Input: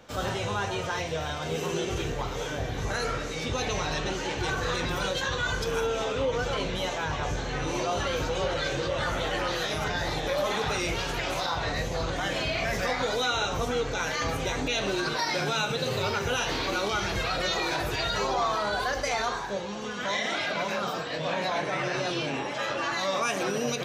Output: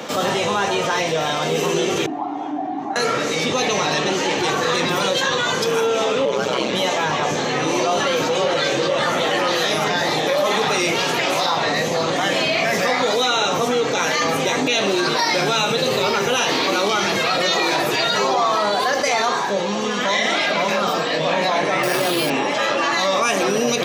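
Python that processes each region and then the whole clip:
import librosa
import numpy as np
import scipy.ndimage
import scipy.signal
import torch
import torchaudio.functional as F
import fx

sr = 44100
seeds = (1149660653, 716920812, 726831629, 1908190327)

y = fx.chain(x, sr, fx.double_bandpass(hz=480.0, octaves=1.4),
    fx.comb(ms=2.8, depth=0.31), at=(2.06, 2.96))
y = fx.chain(y, sr, fx.notch(hz=1900.0, q=11.0),
    fx.ring_mod(carrier_hz=63.0),
    fx.clip_hard(threshold_db=-21.0), at=(6.25, 6.73))
y = fx.chain(y, sr, fx.lowpass(hz=8300.0, slope=12),
    fx.resample_bad(factor=6, down='none', up='hold'), at=(21.83, 22.3))
y = scipy.signal.sosfilt(scipy.signal.butter(4, 170.0, 'highpass', fs=sr, output='sos'), y)
y = fx.notch(y, sr, hz=1500.0, q=11.0)
y = fx.env_flatten(y, sr, amount_pct=50)
y = y * librosa.db_to_amplitude(8.0)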